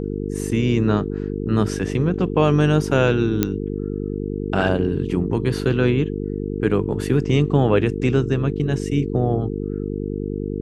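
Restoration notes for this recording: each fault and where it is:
buzz 50 Hz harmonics 9 -26 dBFS
3.43 pop -4 dBFS

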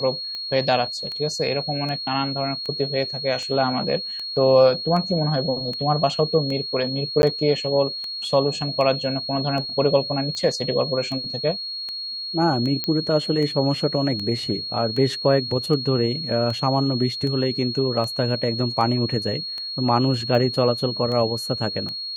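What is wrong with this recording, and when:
tick 78 rpm -19 dBFS
tone 4300 Hz -28 dBFS
7.22–7.23 gap 11 ms
12.84 pop -10 dBFS

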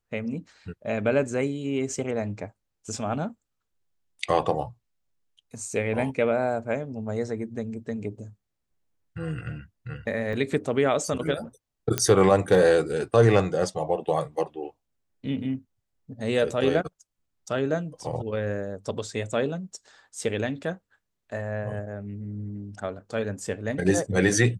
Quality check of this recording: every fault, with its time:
10.33 gap 2.2 ms
11.98 pop -7 dBFS

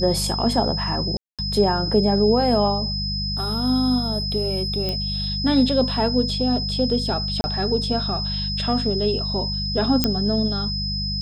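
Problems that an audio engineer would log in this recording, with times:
hum 50 Hz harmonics 4 -28 dBFS
tone 5100 Hz -26 dBFS
1.17–1.39 gap 0.217 s
4.89 pop -13 dBFS
7.41–7.44 gap 30 ms
10.04 pop -4 dBFS

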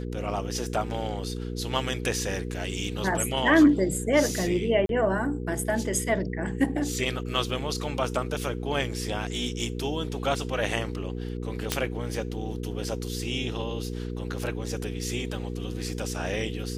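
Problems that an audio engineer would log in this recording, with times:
hum 60 Hz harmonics 8 -33 dBFS
4.86–4.89 gap 32 ms
11.72 pop -7 dBFS

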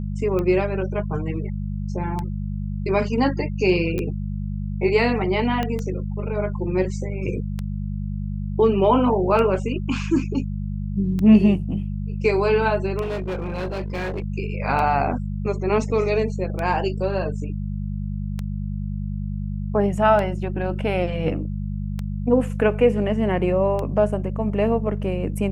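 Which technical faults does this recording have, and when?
hum 50 Hz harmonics 4 -27 dBFS
tick 33 1/3 rpm -15 dBFS
3.98 pop -16 dBFS
5.63 pop -12 dBFS
13.01–14.24 clipped -23.5 dBFS

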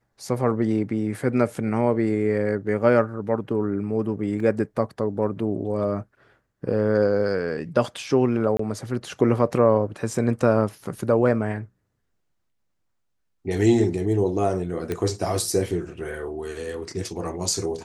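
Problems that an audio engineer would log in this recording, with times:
4.4 gap 2.3 ms
8.57–8.59 gap 24 ms
14.92 pop -14 dBFS

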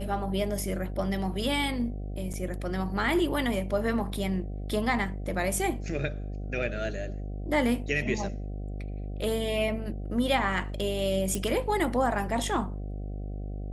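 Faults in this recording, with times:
buzz 50 Hz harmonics 15 -35 dBFS
2.33–2.34 gap 7.2 ms
11.35 pop -16 dBFS

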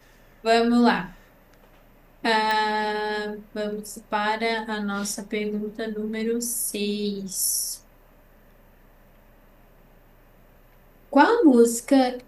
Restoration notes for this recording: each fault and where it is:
2.51 pop

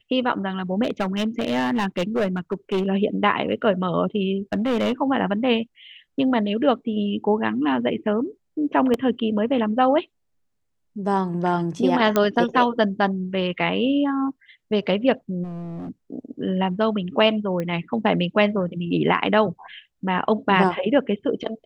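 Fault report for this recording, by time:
0.83–2.87 clipped -18 dBFS
4.53–4.92 clipped -17.5 dBFS
8.94 gap 2 ms
12.16 pop -6 dBFS
15.43–15.9 clipped -30.5 dBFS
17.6 pop -16 dBFS

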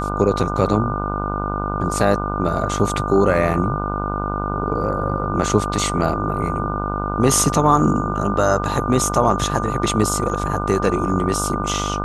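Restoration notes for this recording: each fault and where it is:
buzz 50 Hz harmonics 30 -25 dBFS
tone 1200 Hz -26 dBFS

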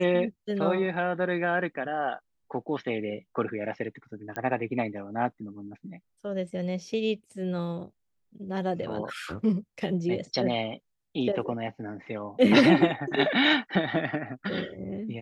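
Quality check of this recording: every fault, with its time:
4.36 pop -19 dBFS

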